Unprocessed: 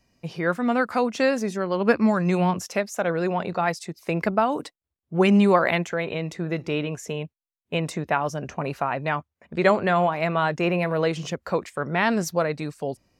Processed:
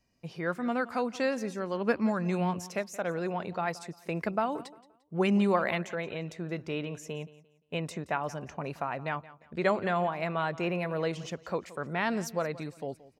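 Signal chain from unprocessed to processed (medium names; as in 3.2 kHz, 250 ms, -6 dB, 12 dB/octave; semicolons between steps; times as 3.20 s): feedback delay 174 ms, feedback 30%, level -18.5 dB; trim -8 dB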